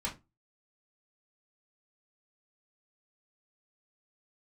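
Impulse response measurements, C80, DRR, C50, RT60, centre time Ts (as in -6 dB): 22.5 dB, -4.0 dB, 13.5 dB, 0.25 s, 17 ms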